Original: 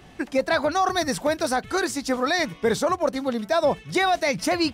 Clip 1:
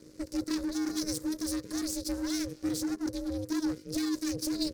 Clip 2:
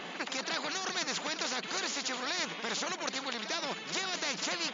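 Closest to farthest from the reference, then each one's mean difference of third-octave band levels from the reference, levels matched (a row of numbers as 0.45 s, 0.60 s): 1, 2; 8.0 dB, 11.0 dB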